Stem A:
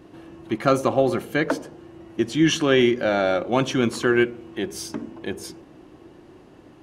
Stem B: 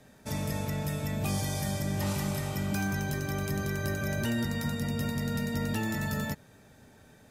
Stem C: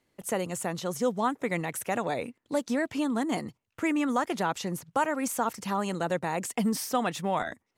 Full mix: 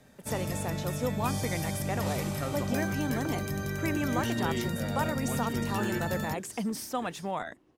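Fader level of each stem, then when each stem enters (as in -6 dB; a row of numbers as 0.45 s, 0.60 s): -18.5 dB, -1.5 dB, -5.0 dB; 1.75 s, 0.00 s, 0.00 s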